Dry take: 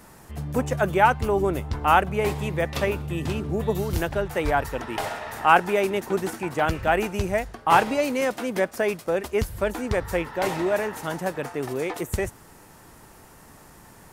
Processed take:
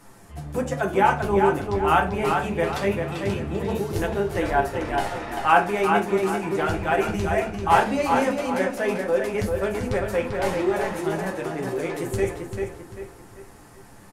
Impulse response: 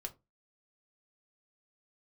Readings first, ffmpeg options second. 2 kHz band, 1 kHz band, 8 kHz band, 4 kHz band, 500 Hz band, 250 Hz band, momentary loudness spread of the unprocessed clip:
0.0 dB, +1.0 dB, −1.0 dB, −1.0 dB, +1.5 dB, +2.0 dB, 10 LU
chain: -filter_complex "[0:a]flanger=delay=7.1:depth=5.6:regen=36:speed=1.3:shape=sinusoidal,asplit=2[link_01][link_02];[link_02]adelay=392,lowpass=frequency=4900:poles=1,volume=-4.5dB,asplit=2[link_03][link_04];[link_04]adelay=392,lowpass=frequency=4900:poles=1,volume=0.39,asplit=2[link_05][link_06];[link_06]adelay=392,lowpass=frequency=4900:poles=1,volume=0.39,asplit=2[link_07][link_08];[link_08]adelay=392,lowpass=frequency=4900:poles=1,volume=0.39,asplit=2[link_09][link_10];[link_10]adelay=392,lowpass=frequency=4900:poles=1,volume=0.39[link_11];[link_01][link_03][link_05][link_07][link_09][link_11]amix=inputs=6:normalize=0[link_12];[1:a]atrim=start_sample=2205,asetrate=23814,aresample=44100[link_13];[link_12][link_13]afir=irnorm=-1:irlink=0,volume=1.5dB"

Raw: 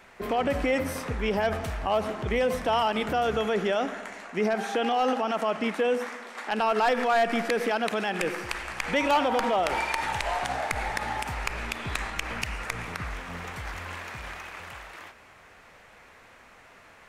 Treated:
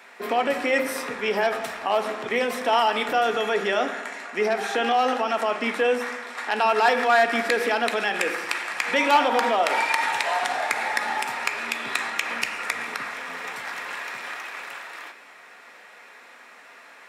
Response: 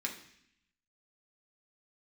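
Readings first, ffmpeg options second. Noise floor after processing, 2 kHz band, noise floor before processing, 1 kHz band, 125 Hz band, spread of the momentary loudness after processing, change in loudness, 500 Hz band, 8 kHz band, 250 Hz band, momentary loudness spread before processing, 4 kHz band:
−48 dBFS, +6.5 dB, −53 dBFS, +4.5 dB, below −10 dB, 13 LU, +4.0 dB, +2.5 dB, +4.5 dB, −1.0 dB, 13 LU, +5.0 dB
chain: -filter_complex "[0:a]highpass=380,asplit=2[link_01][link_02];[1:a]atrim=start_sample=2205,lowshelf=frequency=78:gain=8[link_03];[link_02][link_03]afir=irnorm=-1:irlink=0,volume=-1dB[link_04];[link_01][link_04]amix=inputs=2:normalize=0"

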